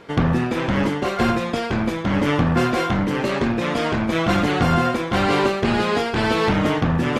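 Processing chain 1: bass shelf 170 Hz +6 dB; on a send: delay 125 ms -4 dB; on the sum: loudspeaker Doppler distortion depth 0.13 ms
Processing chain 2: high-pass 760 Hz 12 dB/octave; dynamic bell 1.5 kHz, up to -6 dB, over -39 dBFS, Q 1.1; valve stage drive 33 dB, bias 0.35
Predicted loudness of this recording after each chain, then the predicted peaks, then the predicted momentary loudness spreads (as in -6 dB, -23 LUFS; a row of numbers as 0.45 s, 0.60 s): -17.5 LUFS, -35.0 LUFS; -3.5 dBFS, -30.5 dBFS; 4 LU, 2 LU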